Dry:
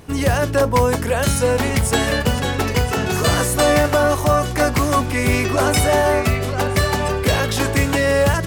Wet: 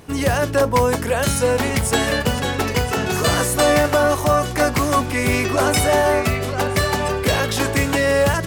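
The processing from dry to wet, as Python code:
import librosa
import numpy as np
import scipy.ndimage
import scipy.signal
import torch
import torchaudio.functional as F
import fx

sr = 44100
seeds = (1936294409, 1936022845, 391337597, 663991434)

y = fx.low_shelf(x, sr, hz=110.0, db=-5.5)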